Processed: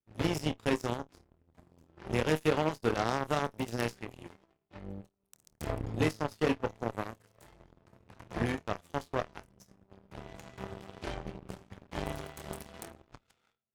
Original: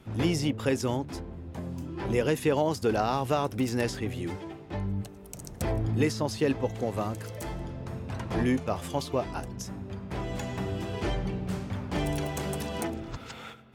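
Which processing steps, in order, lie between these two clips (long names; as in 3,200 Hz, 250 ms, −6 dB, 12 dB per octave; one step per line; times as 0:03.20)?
flutter between parallel walls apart 4.4 metres, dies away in 0.22 s
harmonic generator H 6 −25 dB, 7 −17 dB, 8 −32 dB, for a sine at −11.5 dBFS
level −3.5 dB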